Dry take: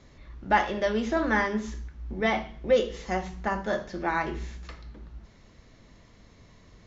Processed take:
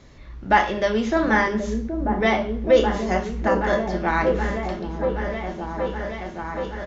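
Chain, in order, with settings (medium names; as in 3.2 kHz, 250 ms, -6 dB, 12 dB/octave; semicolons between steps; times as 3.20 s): doubling 31 ms -13 dB; delay with an opening low-pass 774 ms, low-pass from 400 Hz, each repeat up 1 oct, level -3 dB; trim +5 dB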